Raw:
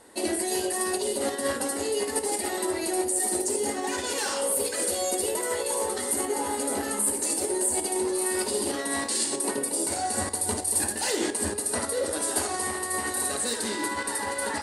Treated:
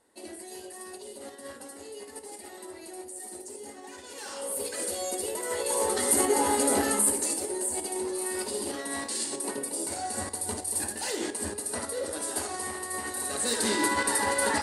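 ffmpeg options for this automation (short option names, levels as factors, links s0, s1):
-af "volume=4.22,afade=t=in:st=4.09:d=0.63:silence=0.316228,afade=t=in:st=5.41:d=0.75:silence=0.354813,afade=t=out:st=6.82:d=0.62:silence=0.354813,afade=t=in:st=13.26:d=0.44:silence=0.375837"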